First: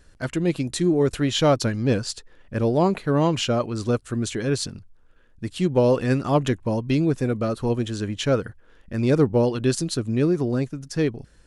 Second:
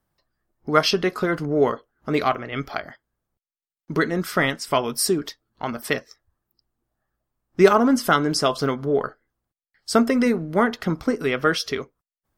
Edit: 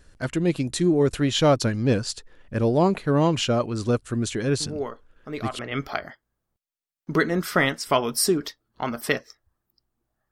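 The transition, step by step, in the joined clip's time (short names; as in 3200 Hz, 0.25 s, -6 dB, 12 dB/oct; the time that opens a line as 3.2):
first
4.6 add second from 1.41 s 0.99 s -11 dB
5.59 switch to second from 2.4 s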